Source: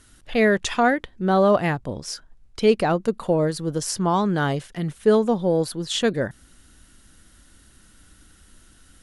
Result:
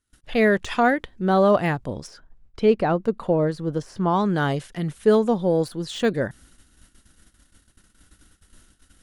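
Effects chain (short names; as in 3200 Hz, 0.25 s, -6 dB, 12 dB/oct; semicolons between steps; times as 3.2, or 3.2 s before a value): de-esser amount 70%; 2.06–4.19 LPF 1600 Hz -> 3200 Hz 6 dB/oct; gate -50 dBFS, range -26 dB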